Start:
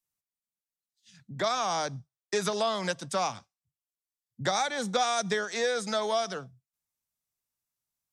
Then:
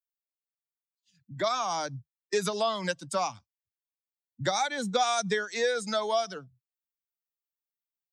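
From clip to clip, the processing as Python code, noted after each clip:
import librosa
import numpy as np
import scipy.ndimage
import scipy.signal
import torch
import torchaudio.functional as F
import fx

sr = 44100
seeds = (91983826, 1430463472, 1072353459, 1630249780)

y = fx.bin_expand(x, sr, power=1.5)
y = y * 10.0 ** (2.5 / 20.0)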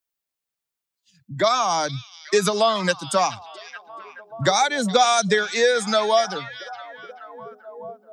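y = fx.echo_stepped(x, sr, ms=428, hz=3300.0, octaves=-0.7, feedback_pct=70, wet_db=-9.5)
y = y * 10.0 ** (9.0 / 20.0)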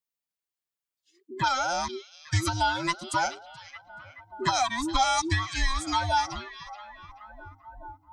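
y = fx.band_invert(x, sr, width_hz=500)
y = y * 10.0 ** (-6.5 / 20.0)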